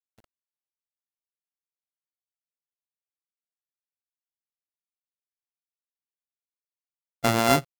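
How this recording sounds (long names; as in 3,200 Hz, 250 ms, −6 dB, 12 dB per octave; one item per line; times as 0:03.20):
a buzz of ramps at a fixed pitch in blocks of 64 samples
tremolo triangle 3.6 Hz, depth 55%
a quantiser's noise floor 10 bits, dither none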